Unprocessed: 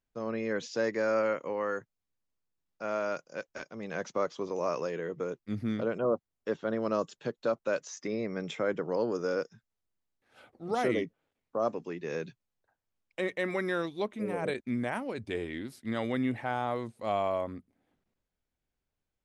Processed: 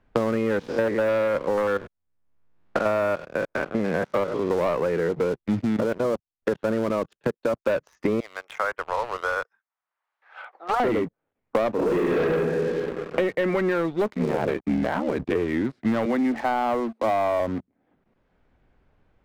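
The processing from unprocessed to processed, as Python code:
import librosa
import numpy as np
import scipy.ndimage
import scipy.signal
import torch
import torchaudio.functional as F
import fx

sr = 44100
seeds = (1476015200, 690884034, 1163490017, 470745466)

y = fx.spec_steps(x, sr, hold_ms=100, at=(0.59, 4.51))
y = fx.level_steps(y, sr, step_db=17, at=(5.59, 7.65))
y = fx.ladder_highpass(y, sr, hz=750.0, resonance_pct=25, at=(8.2, 10.8))
y = fx.reverb_throw(y, sr, start_s=11.74, length_s=0.52, rt60_s=1.7, drr_db=-10.0)
y = fx.ring_mod(y, sr, carrier_hz=37.0, at=(14.13, 15.34), fade=0.02)
y = fx.cheby_ripple_highpass(y, sr, hz=220.0, ripple_db=3, at=(16.05, 17.4))
y = scipy.signal.sosfilt(scipy.signal.butter(2, 1800.0, 'lowpass', fs=sr, output='sos'), y)
y = fx.leveller(y, sr, passes=3)
y = fx.band_squash(y, sr, depth_pct=100)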